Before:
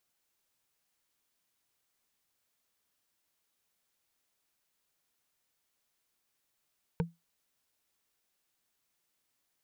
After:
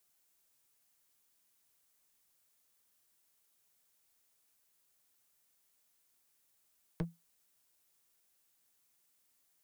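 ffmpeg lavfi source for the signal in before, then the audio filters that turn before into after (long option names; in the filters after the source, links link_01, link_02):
-f lavfi -i "aevalsrc='0.0668*pow(10,-3*t/0.2)*sin(2*PI*168*t)+0.0447*pow(10,-3*t/0.059)*sin(2*PI*463.2*t)+0.0299*pow(10,-3*t/0.026)*sin(2*PI*907.9*t)+0.02*pow(10,-3*t/0.014)*sin(2*PI*1500.7*t)+0.0133*pow(10,-3*t/0.009)*sin(2*PI*2241.1*t)':duration=0.45:sample_rate=44100"
-filter_complex "[0:a]acrossover=split=170|1700|6500[link_01][link_02][link_03][link_04];[link_04]acontrast=76[link_05];[link_01][link_02][link_03][link_05]amix=inputs=4:normalize=0,aeval=exprs='clip(val(0),-1,0.0133)':channel_layout=same"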